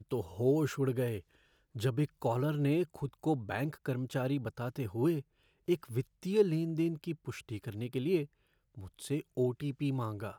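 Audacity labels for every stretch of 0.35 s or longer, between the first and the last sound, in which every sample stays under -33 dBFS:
1.180000	1.770000	silence
5.190000	5.690000	silence
8.230000	9.040000	silence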